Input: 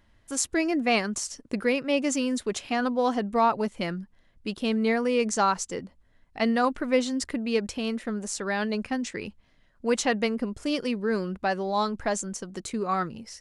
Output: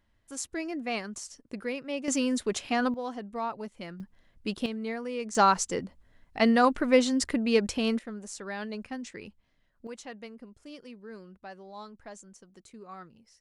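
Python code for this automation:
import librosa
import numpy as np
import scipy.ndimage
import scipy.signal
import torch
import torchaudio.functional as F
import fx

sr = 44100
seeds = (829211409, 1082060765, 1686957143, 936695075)

y = fx.gain(x, sr, db=fx.steps((0.0, -9.0), (2.08, -0.5), (2.94, -11.0), (4.0, -0.5), (4.66, -10.0), (5.35, 2.0), (7.99, -8.5), (9.87, -18.0)))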